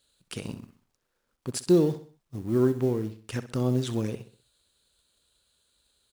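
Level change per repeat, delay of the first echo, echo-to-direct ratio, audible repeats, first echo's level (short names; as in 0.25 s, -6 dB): -7.5 dB, 64 ms, -12.5 dB, 3, -13.5 dB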